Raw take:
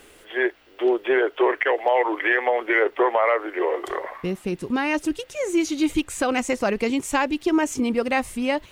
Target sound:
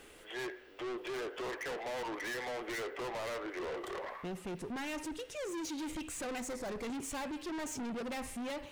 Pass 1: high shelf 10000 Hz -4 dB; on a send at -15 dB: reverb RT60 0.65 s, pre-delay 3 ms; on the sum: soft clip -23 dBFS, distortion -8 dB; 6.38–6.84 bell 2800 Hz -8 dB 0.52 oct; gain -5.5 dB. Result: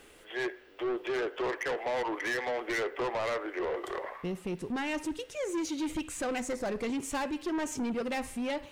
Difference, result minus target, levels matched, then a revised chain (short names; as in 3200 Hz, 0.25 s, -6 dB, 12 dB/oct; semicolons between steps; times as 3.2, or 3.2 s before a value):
soft clip: distortion -5 dB
high shelf 10000 Hz -4 dB; on a send at -15 dB: reverb RT60 0.65 s, pre-delay 3 ms; on the sum: soft clip -32 dBFS, distortion -4 dB; 6.38–6.84 bell 2800 Hz -8 dB 0.52 oct; gain -5.5 dB